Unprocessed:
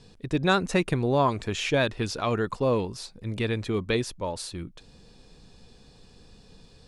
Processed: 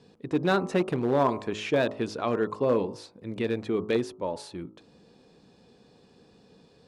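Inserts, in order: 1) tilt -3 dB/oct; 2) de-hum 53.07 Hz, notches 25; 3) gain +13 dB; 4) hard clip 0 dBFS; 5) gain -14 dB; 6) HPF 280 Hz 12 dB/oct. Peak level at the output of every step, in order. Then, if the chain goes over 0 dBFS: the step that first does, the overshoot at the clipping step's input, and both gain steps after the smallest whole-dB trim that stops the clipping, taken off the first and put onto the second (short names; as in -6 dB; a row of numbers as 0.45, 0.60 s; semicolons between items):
-6.5, -7.5, +5.5, 0.0, -14.0, -11.0 dBFS; step 3, 5.5 dB; step 3 +7 dB, step 5 -8 dB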